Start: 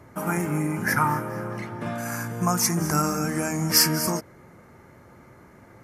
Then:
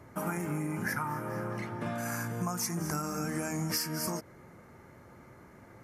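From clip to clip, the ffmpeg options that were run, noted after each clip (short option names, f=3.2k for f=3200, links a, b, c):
-af "acompressor=threshold=-26dB:ratio=12,volume=-3.5dB"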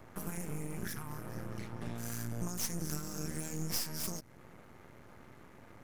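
-filter_complex "[0:a]acrossover=split=250|3000[a][b][c];[b]acompressor=threshold=-49dB:ratio=4[d];[a][d][c]amix=inputs=3:normalize=0,aeval=exprs='max(val(0),0)':c=same,volume=2dB"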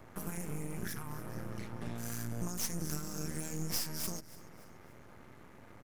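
-af "aecho=1:1:288|576|864:0.106|0.0477|0.0214"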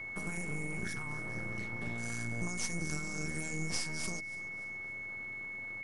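-af "aeval=exprs='val(0)+0.01*sin(2*PI*2200*n/s)':c=same,aresample=22050,aresample=44100"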